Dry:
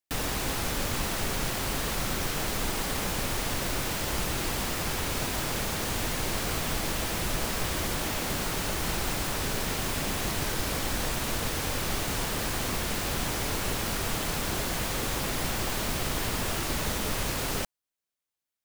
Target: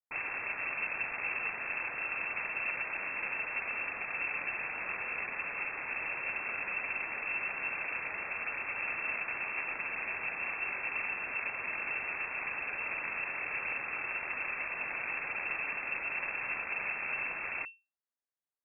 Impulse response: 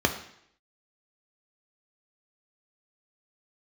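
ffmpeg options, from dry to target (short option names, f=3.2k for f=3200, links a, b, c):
-filter_complex "[0:a]acrossover=split=540[a][b];[a]acrusher=bits=6:dc=4:mix=0:aa=0.000001[c];[c][b]amix=inputs=2:normalize=0,lowpass=f=2.3k:t=q:w=0.5098,lowpass=f=2.3k:t=q:w=0.6013,lowpass=f=2.3k:t=q:w=0.9,lowpass=f=2.3k:t=q:w=2.563,afreqshift=-2700,volume=-6dB"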